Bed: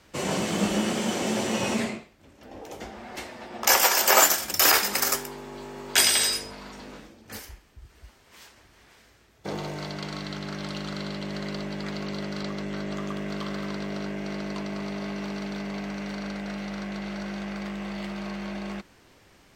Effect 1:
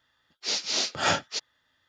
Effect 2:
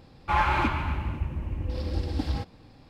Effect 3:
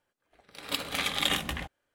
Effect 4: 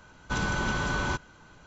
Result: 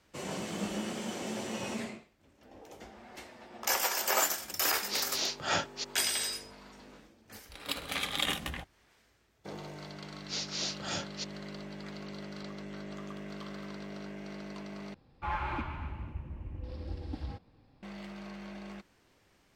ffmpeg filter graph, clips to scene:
ffmpeg -i bed.wav -i cue0.wav -i cue1.wav -i cue2.wav -filter_complex "[1:a]asplit=2[link_01][link_02];[0:a]volume=-10.5dB[link_03];[link_02]acrossover=split=490|3000[link_04][link_05][link_06];[link_05]acompressor=threshold=-32dB:ratio=6:attack=3.2:release=140:knee=2.83:detection=peak[link_07];[link_04][link_07][link_06]amix=inputs=3:normalize=0[link_08];[2:a]highshelf=frequency=4700:gain=-9[link_09];[link_03]asplit=2[link_10][link_11];[link_10]atrim=end=14.944[link_12];[link_09]atrim=end=2.89,asetpts=PTS-STARTPTS,volume=-10.5dB[link_13];[link_11]atrim=start=17.826[link_14];[link_01]atrim=end=1.88,asetpts=PTS-STARTPTS,volume=-6dB,afade=type=in:duration=0.004:curve=hsin,afade=type=out:start_time=1.876:duration=0.004:curve=hsin,adelay=196245S[link_15];[3:a]atrim=end=1.94,asetpts=PTS-STARTPTS,volume=-4dB,afade=type=in:duration=0.004:curve=hsin,afade=type=out:start_time=1.936:duration=0.004:curve=hsin,adelay=6970[link_16];[link_08]atrim=end=1.88,asetpts=PTS-STARTPTS,volume=-8dB,afade=type=in:duration=0.004:curve=hsin,afade=type=out:start_time=1.876:duration=0.004:curve=hsin,adelay=9850[link_17];[link_12][link_13]acrossfade=duration=0.004:curve1=hsin:curve2=hsin[link_18];[link_18][link_14]acrossfade=duration=0.004:curve1=hsin:curve2=hsin[link_19];[link_19][link_15][link_16][link_17]amix=inputs=4:normalize=0" out.wav

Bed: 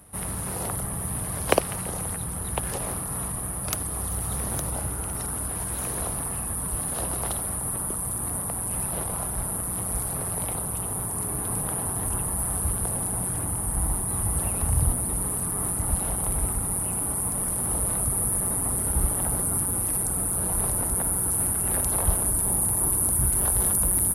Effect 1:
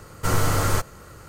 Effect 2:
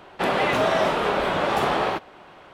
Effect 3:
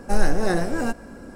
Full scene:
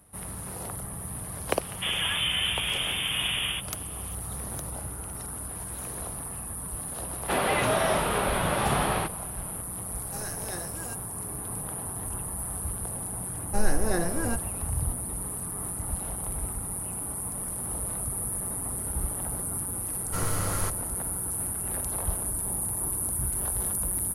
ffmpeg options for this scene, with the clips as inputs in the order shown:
ffmpeg -i bed.wav -i cue0.wav -i cue1.wav -i cue2.wav -filter_complex "[2:a]asplit=2[link_01][link_02];[3:a]asplit=2[link_03][link_04];[0:a]volume=-6.5dB[link_05];[link_01]lowpass=frequency=3100:width_type=q:width=0.5098,lowpass=frequency=3100:width_type=q:width=0.6013,lowpass=frequency=3100:width_type=q:width=0.9,lowpass=frequency=3100:width_type=q:width=2.563,afreqshift=-3700[link_06];[link_02]asubboost=boost=9.5:cutoff=150[link_07];[link_03]aemphasis=mode=production:type=riaa[link_08];[link_04]agate=range=-33dB:threshold=-32dB:ratio=3:release=100:detection=peak[link_09];[link_06]atrim=end=2.53,asetpts=PTS-STARTPTS,volume=-7dB,afade=type=in:duration=0.004:curve=hsin,afade=type=out:start_time=2.526:duration=0.004:curve=hsin,adelay=1620[link_10];[link_07]atrim=end=2.53,asetpts=PTS-STARTPTS,volume=-3.5dB,afade=type=in:duration=0.004:curve=hsin,afade=type=out:start_time=2.526:duration=0.004:curve=hsin,adelay=7090[link_11];[link_08]atrim=end=1.35,asetpts=PTS-STARTPTS,volume=-15dB,afade=type=in:duration=0.004:curve=hsin,afade=type=out:start_time=1.346:duration=0.004:curve=hsin,adelay=10030[link_12];[link_09]atrim=end=1.35,asetpts=PTS-STARTPTS,volume=-5.5dB,afade=type=in:duration=0.004:curve=hsin,afade=type=out:start_time=1.346:duration=0.004:curve=hsin,adelay=13440[link_13];[1:a]atrim=end=1.28,asetpts=PTS-STARTPTS,volume=-9dB,afade=type=in:duration=0.004:curve=hsin,afade=type=out:start_time=1.276:duration=0.004:curve=hsin,adelay=19890[link_14];[link_05][link_10][link_11][link_12][link_13][link_14]amix=inputs=6:normalize=0" out.wav

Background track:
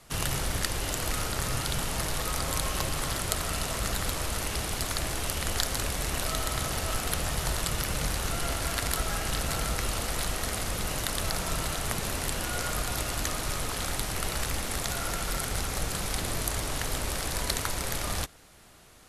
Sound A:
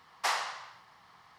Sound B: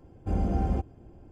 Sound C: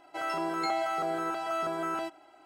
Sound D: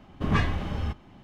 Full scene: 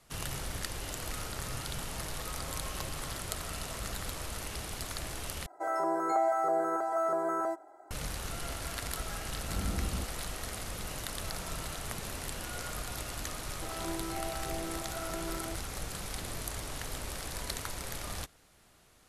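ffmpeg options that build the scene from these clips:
ffmpeg -i bed.wav -i cue0.wav -i cue1.wav -i cue2.wav -filter_complex "[3:a]asplit=2[link_01][link_02];[0:a]volume=-8dB[link_03];[link_01]firequalizer=gain_entry='entry(250,0);entry(410,12);entry(1900,3);entry(2700,-22);entry(6600,6)':delay=0.05:min_phase=1[link_04];[2:a]tiltshelf=frequency=700:gain=8[link_05];[link_02]tiltshelf=frequency=750:gain=9[link_06];[link_03]asplit=2[link_07][link_08];[link_07]atrim=end=5.464[link_09];[link_04]atrim=end=2.45,asetpts=PTS-STARTPTS,volume=-7dB[link_10];[link_08]atrim=start=7.906[link_11];[link_05]atrim=end=1.31,asetpts=PTS-STARTPTS,volume=-15.5dB,afade=type=in:duration=0.004:curve=hsin,afade=type=out:start_time=1.306:duration=0.004:curve=hsin,adelay=9230[link_12];[link_06]atrim=end=2.45,asetpts=PTS-STARTPTS,volume=-9.5dB,afade=type=in:duration=0.004:curve=hsin,afade=type=out:start_time=2.446:duration=0.004:curve=hsin,adelay=13470[link_13];[link_09][link_10]acrossfade=duration=0.004:curve1=hsin:curve2=hsin[link_14];[link_14][link_11]acrossfade=duration=0.004:curve1=hsin:curve2=hsin[link_15];[link_15][link_12][link_13]amix=inputs=3:normalize=0" out.wav

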